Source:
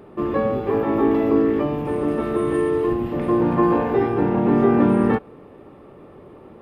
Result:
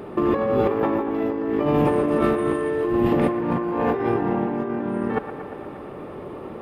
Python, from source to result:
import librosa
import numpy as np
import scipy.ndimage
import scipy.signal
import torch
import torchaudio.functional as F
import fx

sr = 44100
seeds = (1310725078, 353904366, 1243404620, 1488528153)

y = fx.low_shelf(x, sr, hz=130.0, db=-4.5)
y = fx.over_compress(y, sr, threshold_db=-26.0, ratio=-1.0)
y = fx.echo_wet_bandpass(y, sr, ms=117, feedback_pct=75, hz=1200.0, wet_db=-9.0)
y = y * 10.0 ** (3.5 / 20.0)